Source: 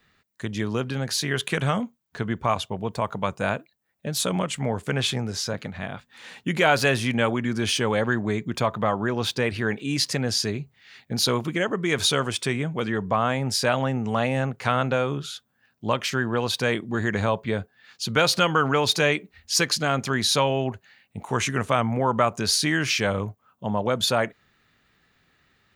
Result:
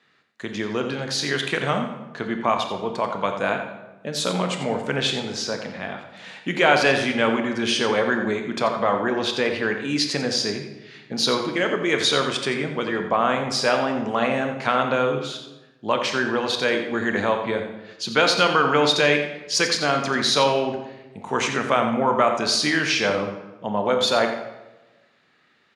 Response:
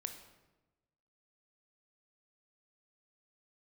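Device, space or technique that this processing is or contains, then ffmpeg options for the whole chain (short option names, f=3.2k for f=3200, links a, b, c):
supermarket ceiling speaker: -filter_complex "[0:a]highpass=230,lowpass=6.2k,asplit=2[a][b];[b]adelay=87.46,volume=-10dB,highshelf=f=4k:g=-1.97[c];[a][c]amix=inputs=2:normalize=0[d];[1:a]atrim=start_sample=2205[e];[d][e]afir=irnorm=-1:irlink=0,volume=5dB"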